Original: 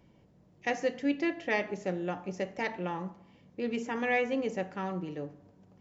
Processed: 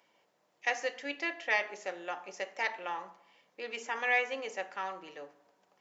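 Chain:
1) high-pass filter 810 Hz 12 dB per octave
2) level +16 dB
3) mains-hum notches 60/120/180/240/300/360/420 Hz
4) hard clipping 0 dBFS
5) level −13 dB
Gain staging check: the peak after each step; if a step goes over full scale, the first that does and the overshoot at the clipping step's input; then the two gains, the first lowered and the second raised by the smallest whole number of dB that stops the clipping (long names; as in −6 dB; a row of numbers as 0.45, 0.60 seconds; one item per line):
−18.0, −2.0, −2.0, −2.0, −15.0 dBFS
no step passes full scale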